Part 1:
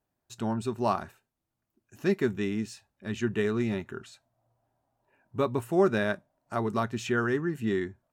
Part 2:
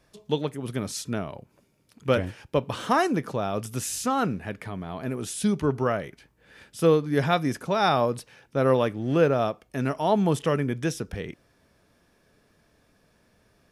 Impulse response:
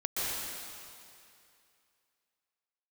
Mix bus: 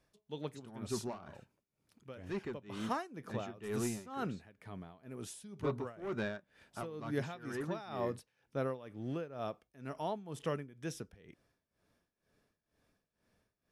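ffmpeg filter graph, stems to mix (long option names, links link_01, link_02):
-filter_complex "[0:a]asoftclip=type=tanh:threshold=-22.5dB,lowpass=6500,adelay=250,volume=-1dB[link_01];[1:a]volume=-11.5dB,asplit=2[link_02][link_03];[link_03]apad=whole_len=369211[link_04];[link_01][link_04]sidechaincompress=threshold=-37dB:ratio=12:attack=16:release=1270[link_05];[link_05][link_02]amix=inputs=2:normalize=0,tremolo=f=2.1:d=0.87"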